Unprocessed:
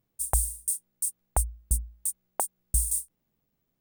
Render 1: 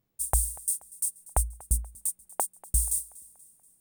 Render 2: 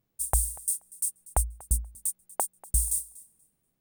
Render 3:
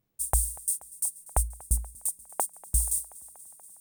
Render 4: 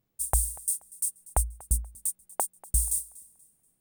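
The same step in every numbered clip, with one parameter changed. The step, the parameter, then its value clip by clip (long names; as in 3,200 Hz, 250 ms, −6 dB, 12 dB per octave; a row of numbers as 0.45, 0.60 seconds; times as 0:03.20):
feedback echo with a high-pass in the loop, feedback: 51, 17, 81, 33%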